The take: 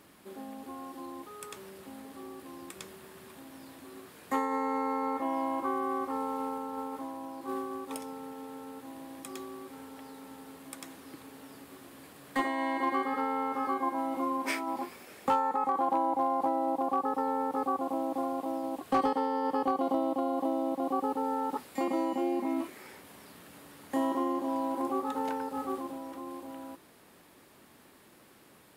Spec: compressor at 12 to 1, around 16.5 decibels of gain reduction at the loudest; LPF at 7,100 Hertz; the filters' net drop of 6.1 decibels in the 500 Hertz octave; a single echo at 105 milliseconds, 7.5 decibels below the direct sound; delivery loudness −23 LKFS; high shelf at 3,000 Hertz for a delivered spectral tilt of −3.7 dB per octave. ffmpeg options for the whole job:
ffmpeg -i in.wav -af "lowpass=7100,equalizer=frequency=500:width_type=o:gain=-7.5,highshelf=frequency=3000:gain=-4,acompressor=threshold=-43dB:ratio=12,aecho=1:1:105:0.422,volume=24dB" out.wav

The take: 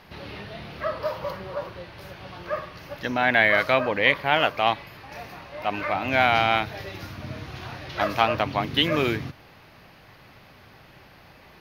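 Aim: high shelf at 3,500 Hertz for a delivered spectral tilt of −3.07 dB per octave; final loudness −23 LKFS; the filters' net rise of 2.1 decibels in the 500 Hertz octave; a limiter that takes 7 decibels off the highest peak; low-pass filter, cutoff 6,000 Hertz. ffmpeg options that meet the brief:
ffmpeg -i in.wav -af "lowpass=6000,equalizer=frequency=500:width_type=o:gain=3,highshelf=frequency=3500:gain=-6,volume=3.5dB,alimiter=limit=-7.5dB:level=0:latency=1" out.wav

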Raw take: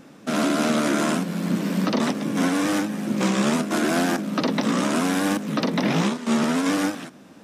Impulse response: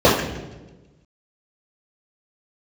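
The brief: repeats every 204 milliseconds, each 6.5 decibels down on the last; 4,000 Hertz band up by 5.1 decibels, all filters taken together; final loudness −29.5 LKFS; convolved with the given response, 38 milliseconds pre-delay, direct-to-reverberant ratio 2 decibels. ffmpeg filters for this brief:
-filter_complex "[0:a]equalizer=frequency=4000:width_type=o:gain=6.5,aecho=1:1:204|408|612|816|1020|1224:0.473|0.222|0.105|0.0491|0.0231|0.0109,asplit=2[link_01][link_02];[1:a]atrim=start_sample=2205,adelay=38[link_03];[link_02][link_03]afir=irnorm=-1:irlink=0,volume=-29.5dB[link_04];[link_01][link_04]amix=inputs=2:normalize=0,volume=-12dB"

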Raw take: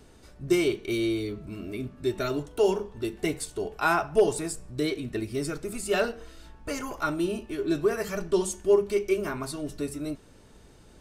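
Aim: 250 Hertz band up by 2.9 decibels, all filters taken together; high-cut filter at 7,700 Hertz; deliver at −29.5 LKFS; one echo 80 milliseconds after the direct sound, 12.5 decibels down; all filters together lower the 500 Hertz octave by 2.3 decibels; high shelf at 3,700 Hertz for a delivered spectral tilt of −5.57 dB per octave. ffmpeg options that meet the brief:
ffmpeg -i in.wav -af "lowpass=7700,equalizer=frequency=250:width_type=o:gain=8.5,equalizer=frequency=500:width_type=o:gain=-7.5,highshelf=frequency=3700:gain=-5.5,aecho=1:1:80:0.237,volume=-0.5dB" out.wav

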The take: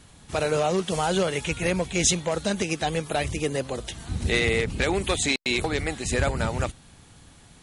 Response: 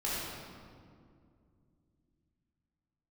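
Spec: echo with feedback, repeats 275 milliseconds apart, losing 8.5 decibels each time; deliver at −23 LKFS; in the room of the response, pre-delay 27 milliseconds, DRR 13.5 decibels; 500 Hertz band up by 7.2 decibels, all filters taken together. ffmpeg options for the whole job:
-filter_complex "[0:a]equalizer=frequency=500:width_type=o:gain=8.5,aecho=1:1:275|550|825|1100:0.376|0.143|0.0543|0.0206,asplit=2[link_01][link_02];[1:a]atrim=start_sample=2205,adelay=27[link_03];[link_02][link_03]afir=irnorm=-1:irlink=0,volume=-20.5dB[link_04];[link_01][link_04]amix=inputs=2:normalize=0,volume=-2dB"

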